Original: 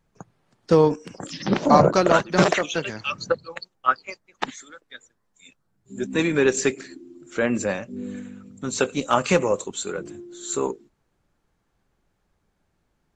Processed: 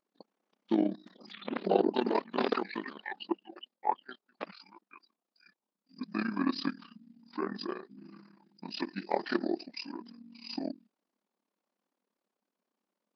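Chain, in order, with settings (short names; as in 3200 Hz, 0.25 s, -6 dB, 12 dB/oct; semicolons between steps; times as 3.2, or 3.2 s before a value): AM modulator 57 Hz, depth 80%; brick-wall FIR high-pass 270 Hz; pitch shift -7 st; gain -7 dB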